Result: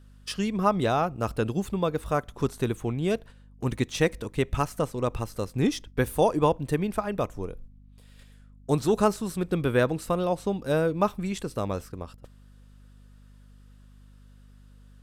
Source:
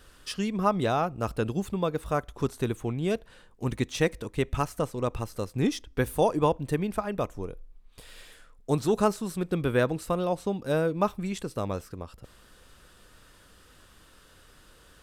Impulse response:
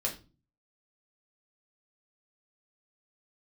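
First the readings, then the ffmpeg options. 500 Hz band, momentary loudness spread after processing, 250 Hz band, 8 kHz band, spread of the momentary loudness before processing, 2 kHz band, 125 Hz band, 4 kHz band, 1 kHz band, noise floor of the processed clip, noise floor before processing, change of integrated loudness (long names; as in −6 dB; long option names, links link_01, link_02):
+1.5 dB, 9 LU, +1.5 dB, +1.5 dB, 9 LU, +1.5 dB, +1.5 dB, +1.5 dB, +1.5 dB, −52 dBFS, −57 dBFS, +1.5 dB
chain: -af "agate=range=-13dB:threshold=-44dB:ratio=16:detection=peak,aeval=exprs='val(0)+0.00251*(sin(2*PI*50*n/s)+sin(2*PI*2*50*n/s)/2+sin(2*PI*3*50*n/s)/3+sin(2*PI*4*50*n/s)/4+sin(2*PI*5*50*n/s)/5)':channel_layout=same,volume=1.5dB"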